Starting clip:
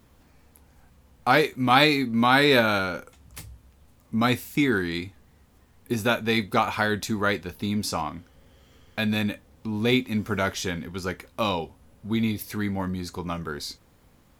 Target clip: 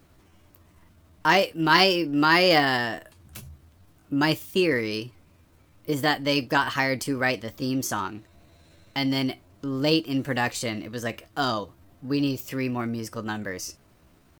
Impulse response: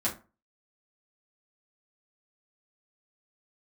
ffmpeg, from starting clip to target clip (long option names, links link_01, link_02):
-af "asetrate=55563,aresample=44100,atempo=0.793701"